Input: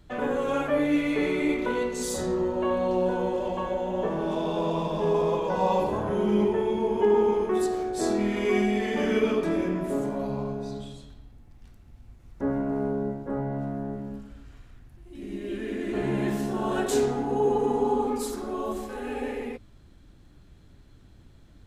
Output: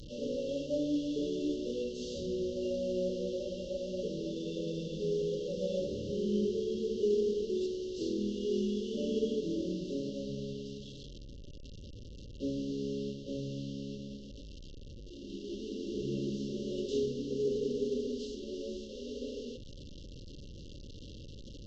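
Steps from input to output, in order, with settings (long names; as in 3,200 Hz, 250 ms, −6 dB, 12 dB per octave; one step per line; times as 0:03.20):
linear delta modulator 32 kbit/s, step −32.5 dBFS
brick-wall band-stop 600–2,700 Hz
level −8 dB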